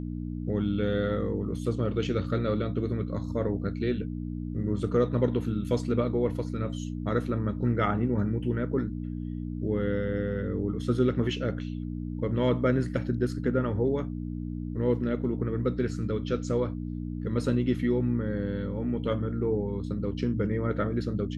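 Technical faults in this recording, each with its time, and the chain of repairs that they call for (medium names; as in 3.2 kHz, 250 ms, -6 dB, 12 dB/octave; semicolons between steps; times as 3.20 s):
hum 60 Hz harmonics 5 -34 dBFS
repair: de-hum 60 Hz, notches 5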